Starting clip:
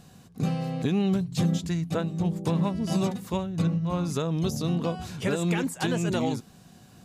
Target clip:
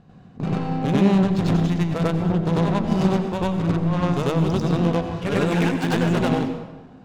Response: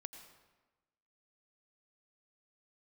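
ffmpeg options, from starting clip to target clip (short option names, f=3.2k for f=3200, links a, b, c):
-filter_complex "[0:a]adynamicsmooth=sensitivity=5:basefreq=2k,aeval=exprs='0.178*(cos(1*acos(clip(val(0)/0.178,-1,1)))-cos(1*PI/2))+0.0447*(cos(2*acos(clip(val(0)/0.178,-1,1)))-cos(2*PI/2))+0.01*(cos(6*acos(clip(val(0)/0.178,-1,1)))-cos(6*PI/2))+0.0224*(cos(8*acos(clip(val(0)/0.178,-1,1)))-cos(8*PI/2))':c=same,asplit=2[a][b];[1:a]atrim=start_sample=2205,adelay=95[c];[b][c]afir=irnorm=-1:irlink=0,volume=9dB[d];[a][d]amix=inputs=2:normalize=0"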